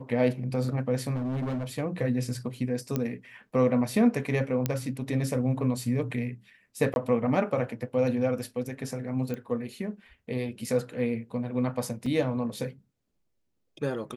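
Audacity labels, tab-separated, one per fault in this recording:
1.140000	1.650000	clipped -27.5 dBFS
2.960000	2.960000	pop -15 dBFS
4.660000	4.660000	pop -12 dBFS
6.940000	6.960000	dropout 21 ms
9.340000	9.340000	pop -22 dBFS
12.060000	12.060000	dropout 3.5 ms

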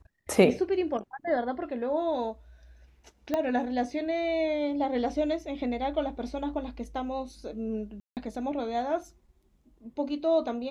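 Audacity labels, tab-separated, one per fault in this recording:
3.340000	3.340000	pop -15 dBFS
8.000000	8.170000	dropout 168 ms

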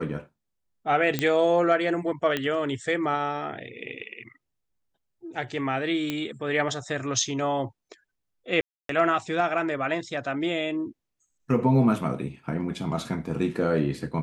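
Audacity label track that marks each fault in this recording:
1.190000	1.190000	pop -10 dBFS
2.370000	2.370000	pop -13 dBFS
6.100000	6.100000	pop -14 dBFS
8.610000	8.890000	dropout 283 ms

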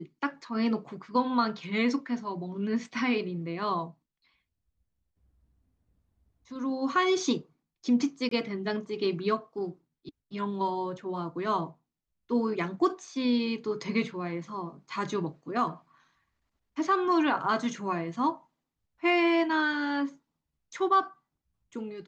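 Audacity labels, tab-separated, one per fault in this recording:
8.290000	8.310000	dropout 23 ms

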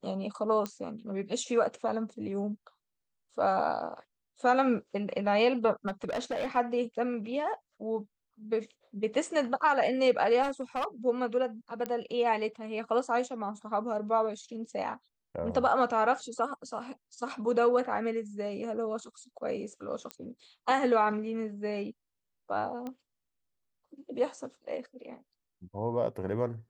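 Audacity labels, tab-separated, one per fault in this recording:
0.660000	0.660000	pop -20 dBFS
5.870000	6.570000	clipped -28.5 dBFS
10.420000	10.850000	clipped -27.5 dBFS
11.860000	11.860000	pop -19 dBFS
20.110000	20.110000	pop -22 dBFS
22.870000	22.870000	pop -26 dBFS

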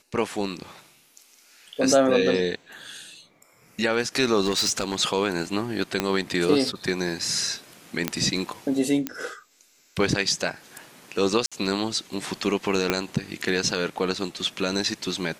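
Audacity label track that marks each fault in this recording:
4.450000	5.010000	clipped -18.5 dBFS
6.000000	6.000000	pop -7 dBFS
8.080000	8.080000	pop -6 dBFS
9.070000	9.070000	pop -11 dBFS
11.460000	11.520000	dropout 56 ms
12.900000	12.900000	pop -6 dBFS

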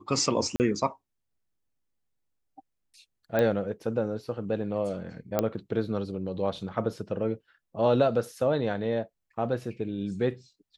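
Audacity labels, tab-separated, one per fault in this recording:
0.560000	0.600000	dropout 39 ms
3.390000	3.390000	pop -14 dBFS
5.390000	5.390000	pop -11 dBFS

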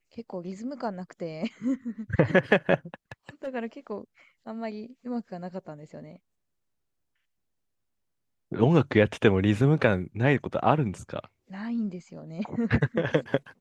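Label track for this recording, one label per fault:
3.120000	3.480000	clipped -31 dBFS

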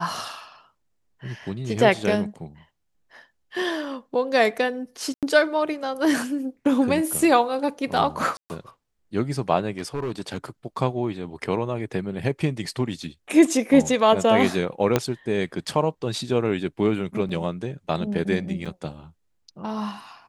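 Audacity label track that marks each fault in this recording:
5.140000	5.230000	dropout 87 ms
8.370000	8.500000	dropout 129 ms
9.780000	10.370000	clipped -23 dBFS
14.960000	14.960000	pop -5 dBFS
17.290000	17.290000	dropout 4 ms
18.650000	18.660000	dropout 6.3 ms

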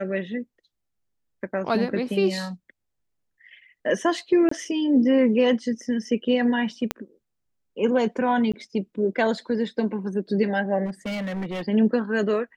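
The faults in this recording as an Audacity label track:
4.490000	4.510000	dropout 24 ms
6.910000	6.910000	pop -9 dBFS
8.520000	8.540000	dropout 16 ms
10.850000	11.630000	clipped -26 dBFS

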